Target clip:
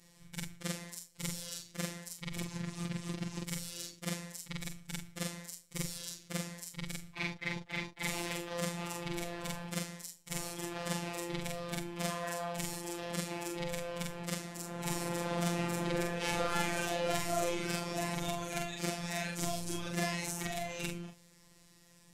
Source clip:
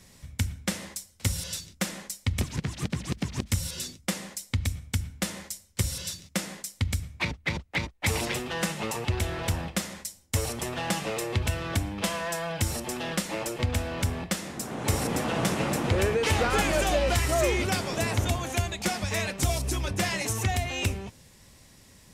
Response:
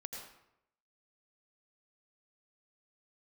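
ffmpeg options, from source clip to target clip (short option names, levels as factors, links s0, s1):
-af "afftfilt=real='re':imag='-im':win_size=4096:overlap=0.75,afftfilt=real='hypot(re,im)*cos(PI*b)':imag='0':win_size=1024:overlap=0.75"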